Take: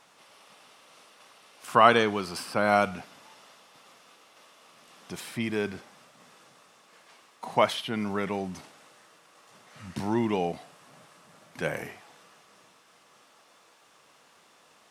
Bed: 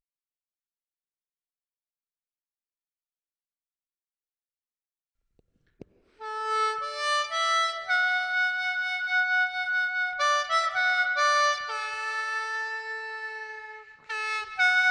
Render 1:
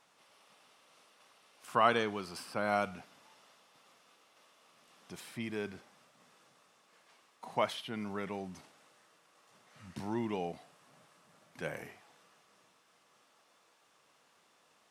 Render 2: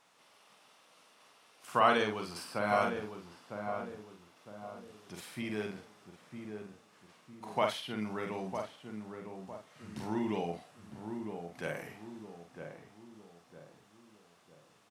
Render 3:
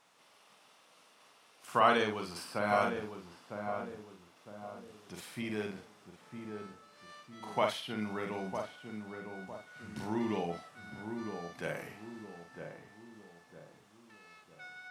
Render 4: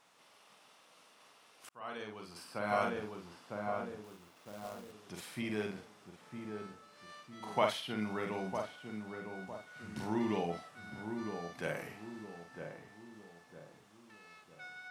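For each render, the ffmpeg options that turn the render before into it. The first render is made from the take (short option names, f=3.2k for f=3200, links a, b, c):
-af "volume=-9dB"
-filter_complex "[0:a]asplit=2[a][b];[b]adelay=47,volume=-4dB[c];[a][c]amix=inputs=2:normalize=0,asplit=2[d][e];[e]adelay=956,lowpass=f=1k:p=1,volume=-6dB,asplit=2[f][g];[g]adelay=956,lowpass=f=1k:p=1,volume=0.45,asplit=2[h][i];[i]adelay=956,lowpass=f=1k:p=1,volume=0.45,asplit=2[j][k];[k]adelay=956,lowpass=f=1k:p=1,volume=0.45,asplit=2[l][m];[m]adelay=956,lowpass=f=1k:p=1,volume=0.45[n];[d][f][h][j][l][n]amix=inputs=6:normalize=0"
-filter_complex "[1:a]volume=-28dB[a];[0:a][a]amix=inputs=2:normalize=0"
-filter_complex "[0:a]asettb=1/sr,asplit=3[a][b][c];[a]atrim=end=4.044[d];[b]atrim=start=4.04:end=4.92,asetpts=PTS-STARTPTS,afade=t=in:d=0.004:c=qsin,afade=t=out:st=0.876:d=0.004:c=qsin,acrusher=bits=2:mode=log:mix=0:aa=0.000001[e];[c]atrim=start=4.916[f];[d][e]acrossfade=d=0.004:c1=hsin:c2=qsin[g];[g][f]acrossfade=d=0.004:c1=qsin:c2=hsin,asplit=2[h][i];[h]atrim=end=1.69,asetpts=PTS-STARTPTS,afade=t=out:st=1.686:d=0.004:c=hsin[j];[i]atrim=start=1.69,asetpts=PTS-STARTPTS,afade=t=in:d=1.56[k];[j][k]concat=n=2:v=0:a=1"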